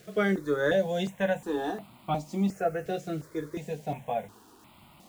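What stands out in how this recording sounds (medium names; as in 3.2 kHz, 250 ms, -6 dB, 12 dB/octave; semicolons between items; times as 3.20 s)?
a quantiser's noise floor 10-bit, dither none; notches that jump at a steady rate 2.8 Hz 250–1700 Hz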